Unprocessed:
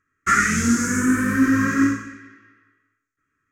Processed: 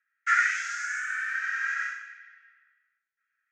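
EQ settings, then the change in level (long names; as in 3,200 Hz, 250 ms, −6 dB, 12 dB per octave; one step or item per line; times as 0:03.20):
Butterworth high-pass 1,400 Hz 72 dB per octave
high-frequency loss of the air 180 metres
−1.0 dB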